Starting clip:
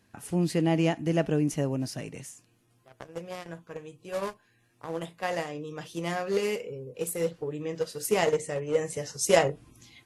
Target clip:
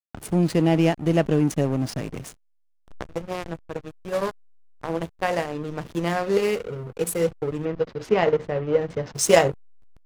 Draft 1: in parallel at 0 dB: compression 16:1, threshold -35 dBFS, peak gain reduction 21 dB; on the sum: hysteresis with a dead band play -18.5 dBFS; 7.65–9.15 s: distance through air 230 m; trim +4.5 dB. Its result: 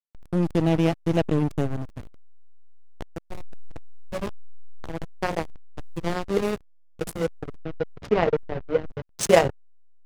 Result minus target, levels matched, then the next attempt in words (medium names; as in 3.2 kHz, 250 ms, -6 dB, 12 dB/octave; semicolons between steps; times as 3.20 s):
hysteresis with a dead band: distortion +11 dB
in parallel at 0 dB: compression 16:1, threshold -35 dBFS, peak gain reduction 21 dB; on the sum: hysteresis with a dead band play -29.5 dBFS; 7.65–9.15 s: distance through air 230 m; trim +4.5 dB